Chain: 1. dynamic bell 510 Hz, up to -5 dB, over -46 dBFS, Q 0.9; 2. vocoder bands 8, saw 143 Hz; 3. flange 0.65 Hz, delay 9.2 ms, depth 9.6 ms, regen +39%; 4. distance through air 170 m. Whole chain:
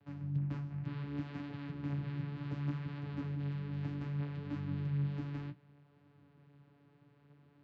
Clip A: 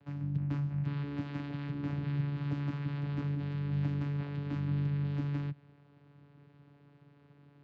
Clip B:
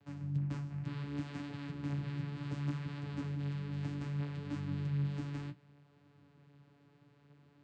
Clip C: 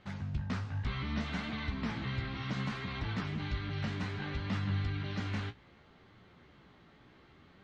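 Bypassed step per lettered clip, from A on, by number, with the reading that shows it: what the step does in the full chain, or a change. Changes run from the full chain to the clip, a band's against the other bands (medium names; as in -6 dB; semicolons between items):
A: 3, loudness change +4.5 LU; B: 4, 4 kHz band +3.5 dB; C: 2, 4 kHz band +10.5 dB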